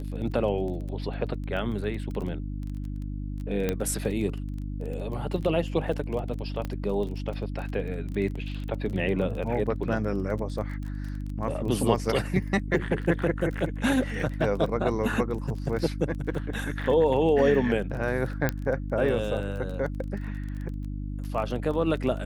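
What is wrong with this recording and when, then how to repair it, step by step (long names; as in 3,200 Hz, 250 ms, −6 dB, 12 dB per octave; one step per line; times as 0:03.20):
surface crackle 22 per second −34 dBFS
mains hum 50 Hz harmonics 6 −33 dBFS
0:03.69: click −13 dBFS
0:06.65: click −19 dBFS
0:18.49: click −11 dBFS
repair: click removal
hum removal 50 Hz, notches 6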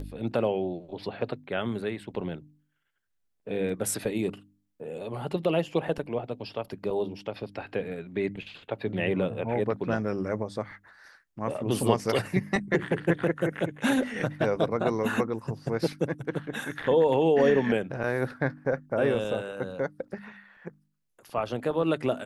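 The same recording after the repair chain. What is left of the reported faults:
0:03.69: click
0:06.65: click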